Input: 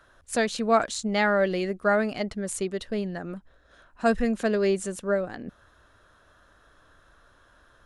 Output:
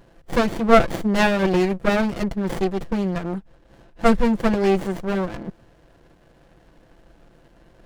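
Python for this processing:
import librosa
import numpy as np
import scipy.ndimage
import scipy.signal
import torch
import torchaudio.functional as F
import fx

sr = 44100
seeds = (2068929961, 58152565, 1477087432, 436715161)

y = x + 0.91 * np.pad(x, (int(5.9 * sr / 1000.0), 0))[:len(x)]
y = fx.running_max(y, sr, window=33)
y = y * 10.0 ** (6.0 / 20.0)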